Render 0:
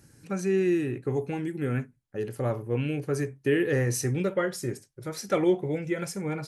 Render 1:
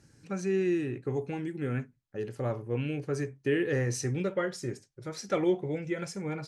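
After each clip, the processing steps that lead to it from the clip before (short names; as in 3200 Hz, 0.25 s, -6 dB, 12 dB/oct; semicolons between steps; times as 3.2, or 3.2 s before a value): Chebyshev low-pass 6400 Hz, order 2; gain -2.5 dB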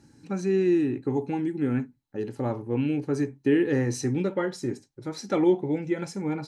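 small resonant body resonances 270/850/4000 Hz, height 11 dB, ringing for 25 ms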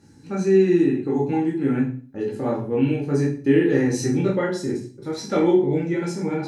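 reverb RT60 0.40 s, pre-delay 11 ms, DRR -3 dB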